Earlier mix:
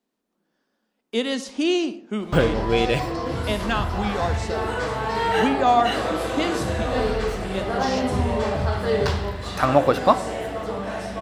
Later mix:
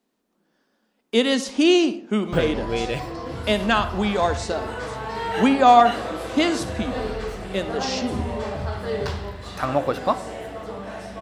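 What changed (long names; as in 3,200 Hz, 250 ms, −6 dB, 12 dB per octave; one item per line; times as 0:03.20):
speech +5.0 dB
background −5.0 dB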